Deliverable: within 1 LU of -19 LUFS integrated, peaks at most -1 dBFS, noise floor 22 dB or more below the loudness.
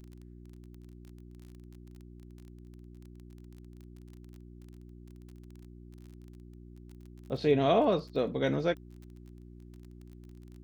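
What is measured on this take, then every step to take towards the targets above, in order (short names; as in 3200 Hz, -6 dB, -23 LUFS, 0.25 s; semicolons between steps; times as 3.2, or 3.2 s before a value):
ticks 26/s; hum 60 Hz; harmonics up to 360 Hz; hum level -47 dBFS; loudness -29.0 LUFS; peak -13.0 dBFS; loudness target -19.0 LUFS
-> de-click; de-hum 60 Hz, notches 6; gain +10 dB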